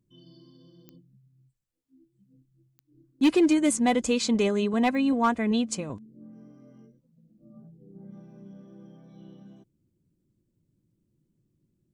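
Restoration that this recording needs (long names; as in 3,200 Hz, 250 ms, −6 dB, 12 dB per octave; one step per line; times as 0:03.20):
clipped peaks rebuilt −15 dBFS
click removal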